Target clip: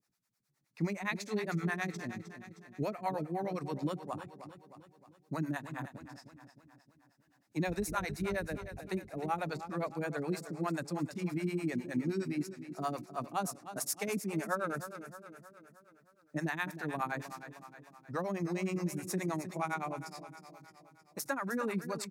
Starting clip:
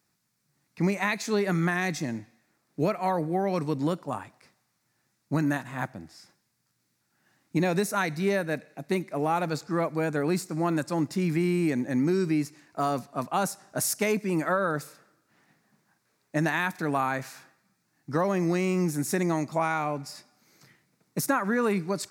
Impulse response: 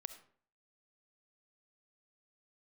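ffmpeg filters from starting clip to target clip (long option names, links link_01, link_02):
-filter_complex "[0:a]asettb=1/sr,asplit=3[link_01][link_02][link_03];[link_01]atrim=end=7.684[link_04];[link_02]atrim=start=7.68:end=8.79,asetpts=PTS-STARTPTS,afade=type=in:duration=0.004:curve=qsin,afade=type=out:start_time=1.106:duration=0.004:curve=qsin,aeval=exprs='val(0)+0.0126*(sin(2*PI*50*n/s)+sin(2*PI*2*50*n/s)/2+sin(2*PI*3*50*n/s)/3+sin(2*PI*4*50*n/s)/4+sin(2*PI*5*50*n/s)/5)':channel_layout=same[link_05];[link_03]atrim=start=8.786[link_06];[link_04][link_05]acrossfade=duration=0.004:curve1=hsin:curve2=qsin[link_07];[link_07][link_06]acrossfade=duration=0.004:curve1=qsin:curve2=hsin,aecho=1:1:310|620|930|1240|1550|1860:0.266|0.138|0.0719|0.0374|0.0195|0.0101,acrossover=split=440[link_08][link_09];[link_08]aeval=exprs='val(0)*(1-1/2+1/2*cos(2*PI*9.6*n/s))':channel_layout=same[link_10];[link_09]aeval=exprs='val(0)*(1-1/2-1/2*cos(2*PI*9.6*n/s))':channel_layout=same[link_11];[link_10][link_11]amix=inputs=2:normalize=0,volume=-4.5dB"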